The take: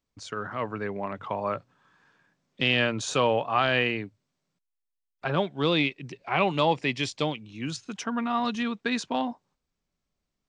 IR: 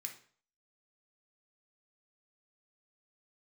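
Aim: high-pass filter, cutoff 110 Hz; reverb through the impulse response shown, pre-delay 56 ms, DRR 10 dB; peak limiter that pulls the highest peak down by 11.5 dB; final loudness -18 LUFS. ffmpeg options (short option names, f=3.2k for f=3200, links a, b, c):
-filter_complex "[0:a]highpass=110,alimiter=limit=-21.5dB:level=0:latency=1,asplit=2[a][b];[1:a]atrim=start_sample=2205,adelay=56[c];[b][c]afir=irnorm=-1:irlink=0,volume=-6.5dB[d];[a][d]amix=inputs=2:normalize=0,volume=15dB"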